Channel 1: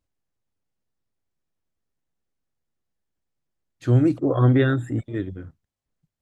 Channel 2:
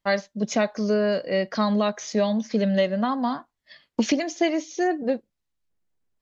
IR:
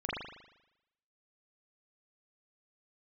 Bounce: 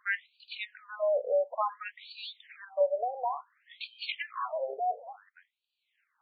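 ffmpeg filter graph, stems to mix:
-filter_complex "[0:a]adynamicequalizer=threshold=0.00316:dfrequency=3100:dqfactor=2.9:tfrequency=3100:tqfactor=2.9:attack=5:release=100:ratio=0.375:range=2:mode=cutabove:tftype=bell,acompressor=mode=upward:threshold=-23dB:ratio=2.5,volume=-2.5dB[link_01];[1:a]volume=-1.5dB[link_02];[link_01][link_02]amix=inputs=2:normalize=0,afftfilt=real='re*between(b*sr/1024,550*pow(3400/550,0.5+0.5*sin(2*PI*0.57*pts/sr))/1.41,550*pow(3400/550,0.5+0.5*sin(2*PI*0.57*pts/sr))*1.41)':imag='im*between(b*sr/1024,550*pow(3400/550,0.5+0.5*sin(2*PI*0.57*pts/sr))/1.41,550*pow(3400/550,0.5+0.5*sin(2*PI*0.57*pts/sr))*1.41)':win_size=1024:overlap=0.75"

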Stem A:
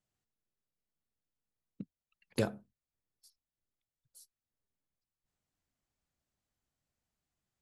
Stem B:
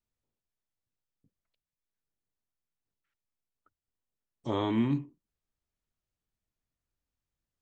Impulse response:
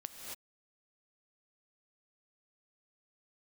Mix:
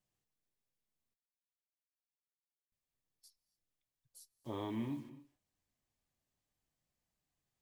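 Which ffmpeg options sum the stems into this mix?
-filter_complex "[0:a]volume=3dB,asplit=3[link_01][link_02][link_03];[link_01]atrim=end=1.14,asetpts=PTS-STARTPTS,afade=type=out:start_time=1.136:duration=0.004:curve=hsin[link_04];[link_02]atrim=start=1.14:end=2.72,asetpts=PTS-STARTPTS,volume=0[link_05];[link_03]atrim=start=2.72,asetpts=PTS-STARTPTS,afade=type=in:duration=0.004:curve=hsin[link_06];[link_04][link_05][link_06]concat=n=3:v=0:a=1,asplit=2[link_07][link_08];[link_08]volume=-15.5dB[link_09];[1:a]acrusher=bits=8:mix=0:aa=0.000001,volume=-9.5dB,asplit=2[link_10][link_11];[link_11]volume=-7dB[link_12];[2:a]atrim=start_sample=2205[link_13];[link_09][link_12]amix=inputs=2:normalize=0[link_14];[link_14][link_13]afir=irnorm=-1:irlink=0[link_15];[link_07][link_10][link_15]amix=inputs=3:normalize=0,bandreject=frequency=1400:width=9.3,flanger=delay=5.4:depth=6:regen=-61:speed=0.29:shape=triangular"

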